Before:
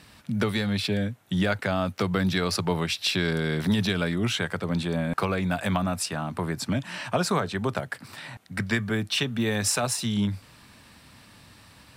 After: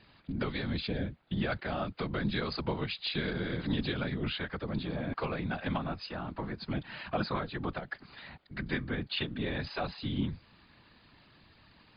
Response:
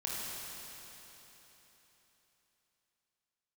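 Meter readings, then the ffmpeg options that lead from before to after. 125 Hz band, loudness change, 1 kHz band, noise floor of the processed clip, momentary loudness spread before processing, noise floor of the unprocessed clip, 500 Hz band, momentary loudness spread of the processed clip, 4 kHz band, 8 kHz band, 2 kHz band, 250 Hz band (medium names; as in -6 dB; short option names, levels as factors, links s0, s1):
-8.0 dB, -8.5 dB, -7.5 dB, -62 dBFS, 6 LU, -53 dBFS, -8.0 dB, 6 LU, -8.5 dB, under -40 dB, -8.0 dB, -8.0 dB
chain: -af "afftfilt=real='hypot(re,im)*cos(2*PI*random(0))':imag='hypot(re,im)*sin(2*PI*random(1))':win_size=512:overlap=0.75,volume=0.841" -ar 11025 -c:a libmp3lame -b:a 64k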